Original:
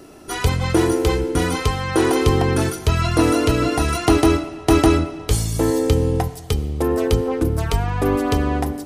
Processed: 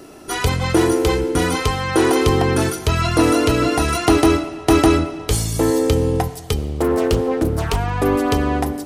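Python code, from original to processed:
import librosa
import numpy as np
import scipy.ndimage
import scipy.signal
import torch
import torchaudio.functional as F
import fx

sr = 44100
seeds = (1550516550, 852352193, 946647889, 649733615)

p1 = 10.0 ** (-14.0 / 20.0) * np.tanh(x / 10.0 ** (-14.0 / 20.0))
p2 = x + (p1 * librosa.db_to_amplitude(-7.0))
p3 = fx.low_shelf(p2, sr, hz=150.0, db=-4.5)
y = fx.doppler_dist(p3, sr, depth_ms=0.49, at=(6.58, 7.77))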